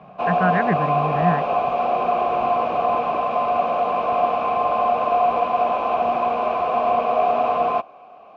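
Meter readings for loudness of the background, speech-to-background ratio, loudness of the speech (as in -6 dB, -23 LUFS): -20.5 LUFS, -4.0 dB, -24.5 LUFS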